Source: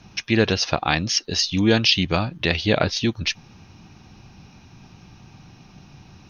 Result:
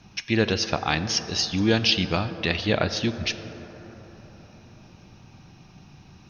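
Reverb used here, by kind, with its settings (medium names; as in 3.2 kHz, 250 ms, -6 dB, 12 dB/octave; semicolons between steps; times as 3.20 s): plate-style reverb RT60 4.7 s, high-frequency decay 0.3×, DRR 10.5 dB; trim -3.5 dB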